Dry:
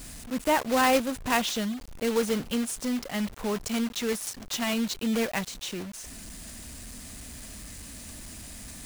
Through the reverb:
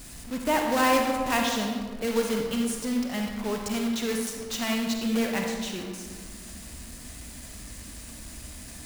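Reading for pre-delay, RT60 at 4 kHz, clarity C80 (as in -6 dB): 39 ms, 0.90 s, 4.5 dB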